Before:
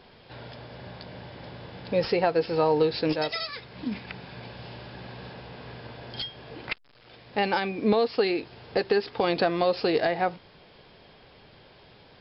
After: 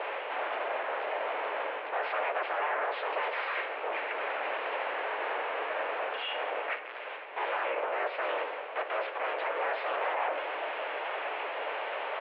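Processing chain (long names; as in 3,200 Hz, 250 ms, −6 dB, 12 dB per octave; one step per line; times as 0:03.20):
sub-harmonics by changed cycles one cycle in 3, inverted
reversed playback
upward compression, threshold −25 dBFS
reversed playback
brickwall limiter −22 dBFS, peak gain reduction 10 dB
sine wavefolder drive 8 dB, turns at −22 dBFS
pitch-shifted copies added −3 semitones −1 dB
single-sideband voice off tune +100 Hz 370–2,600 Hz
on a send: convolution reverb RT60 1.5 s, pre-delay 3 ms, DRR 8 dB
on the sum: level −7 dB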